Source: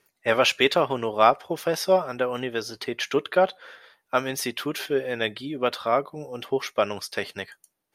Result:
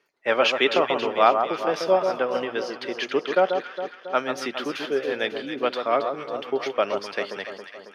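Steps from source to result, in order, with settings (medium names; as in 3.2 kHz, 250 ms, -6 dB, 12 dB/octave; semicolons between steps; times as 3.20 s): three-band isolator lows -17 dB, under 200 Hz, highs -20 dB, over 5.5 kHz; band-stop 3.8 kHz, Q 30; on a send: echo whose repeats swap between lows and highs 137 ms, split 1.4 kHz, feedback 73%, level -6 dB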